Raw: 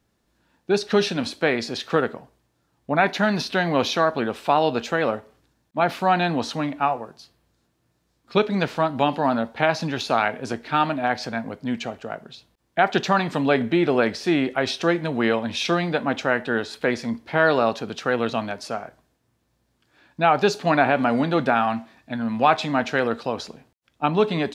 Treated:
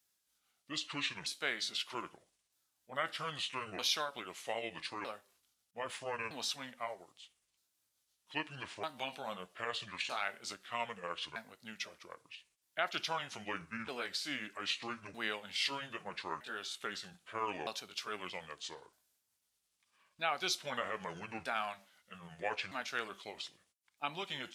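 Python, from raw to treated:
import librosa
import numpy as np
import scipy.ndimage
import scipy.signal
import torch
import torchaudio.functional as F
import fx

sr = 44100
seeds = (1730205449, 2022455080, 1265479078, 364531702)

y = fx.pitch_ramps(x, sr, semitones=-8.0, every_ms=1262)
y = F.preemphasis(torch.from_numpy(y), 0.97).numpy()
y = y * librosa.db_to_amplitude(1.0)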